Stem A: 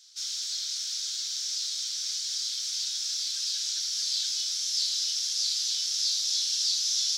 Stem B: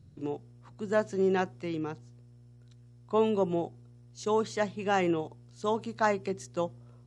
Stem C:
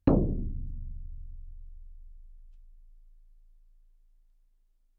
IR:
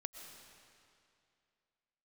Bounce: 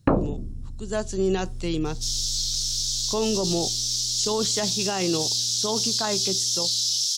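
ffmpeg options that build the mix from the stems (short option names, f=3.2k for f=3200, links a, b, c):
-filter_complex "[0:a]adelay=1850,volume=-7.5dB[a];[1:a]dynaudnorm=f=350:g=7:m=12dB,lowshelf=f=290:g=5,volume=-5.5dB[b];[2:a]equalizer=f=1.5k:w=0.57:g=15,dynaudnorm=f=470:g=5:m=16dB,volume=-0.5dB[c];[a][b]amix=inputs=2:normalize=0,aexciter=amount=4.4:drive=5.4:freq=3k,alimiter=limit=-15dB:level=0:latency=1:release=14,volume=0dB[d];[c][d]amix=inputs=2:normalize=0"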